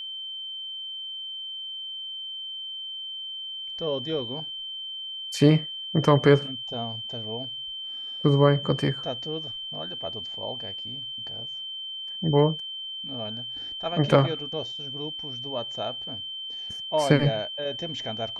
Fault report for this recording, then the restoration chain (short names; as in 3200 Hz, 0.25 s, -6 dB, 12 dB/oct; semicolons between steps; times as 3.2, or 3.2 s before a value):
tone 3100 Hz -33 dBFS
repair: notch 3100 Hz, Q 30